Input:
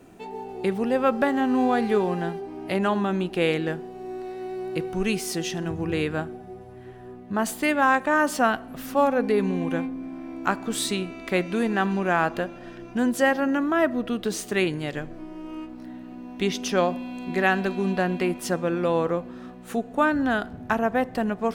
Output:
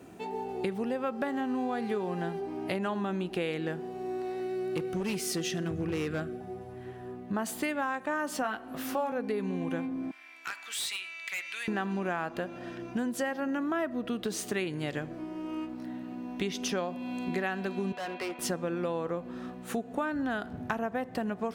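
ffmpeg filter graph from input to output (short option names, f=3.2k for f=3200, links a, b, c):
-filter_complex "[0:a]asettb=1/sr,asplit=3[a][b][c];[a]atrim=end=4.404[d];[b]atrim=start=4.4:end=6.41,asetpts=PTS-STARTPTS,afade=t=in:d=0.004:c=qsin,afade=t=out:st=2.006:d=0.004:c=qsin,asuperstop=centerf=900:order=4:qfactor=2.3,asoftclip=type=hard:threshold=-22.5dB[e];[c]atrim=start=6.406[f];[d][e]acrossfade=d=0.004:c1=hsin:c2=qsin[g];[g][f]acrossfade=d=0.004:c1=qsin:c2=hsin,asettb=1/sr,asplit=3[h][i][j];[h]atrim=end=8.424[k];[i]atrim=start=8.42:end=9.12,asetpts=PTS-STARTPTS,afade=t=in:d=0.004:c=qsin,afade=t=out:st=0.696:d=0.004:c=qsin,bass=f=250:g=-7,treble=f=4k:g=-2,asplit=2[l][m];[m]adelay=19,volume=-5dB[n];[l][n]amix=inputs=2:normalize=0,atrim=end_sample=30870[o];[j]atrim=start=9.116[p];[k][o]acrossfade=d=0.004:c1=hsin:c2=qsin[q];[q][p]acrossfade=d=0.004:c1=qsin:c2=hsin,asettb=1/sr,asplit=3[r][s][t];[r]atrim=end=10.114[u];[s]atrim=start=10.11:end=11.68,asetpts=PTS-STARTPTS,afade=t=in:d=0.004:c=qsin,afade=t=out:st=1.566:d=0.004:c=qsin,highpass=f=2.2k:t=q:w=1.8,asoftclip=type=hard:threshold=-25dB,acompressor=threshold=-35dB:ratio=2:attack=3.2:release=140:knee=1:detection=peak[v];[t]atrim=start=11.676[w];[u][v]acrossfade=d=0.004:c1=hsin:c2=qsin[x];[x][w]acrossfade=d=0.004:c1=qsin:c2=hsin,asettb=1/sr,asplit=3[y][z][aa];[y]atrim=end=17.924[ab];[z]atrim=start=17.92:end=18.39,asetpts=PTS-STARTPTS,afade=t=in:d=0.004:c=qsin,afade=t=out:st=0.466:d=0.004:c=qsin,highpass=570,lowpass=3.6k,asoftclip=type=hard:threshold=-31dB[ac];[aa]atrim=start=18.386[ad];[ab][ac]acrossfade=d=0.004:c1=hsin:c2=qsin[ae];[ae][ad]acrossfade=d=0.004:c1=qsin:c2=hsin,highpass=64,acompressor=threshold=-29dB:ratio=6"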